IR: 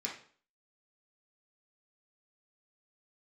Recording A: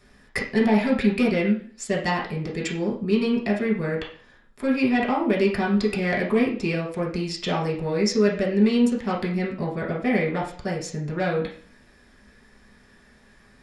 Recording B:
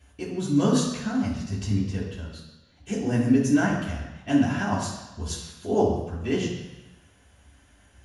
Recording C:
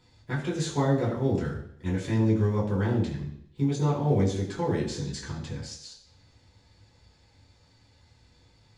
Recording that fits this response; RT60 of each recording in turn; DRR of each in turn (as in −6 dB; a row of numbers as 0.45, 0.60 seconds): A; 0.45, 1.0, 0.70 seconds; −3.5, −10.5, −6.5 decibels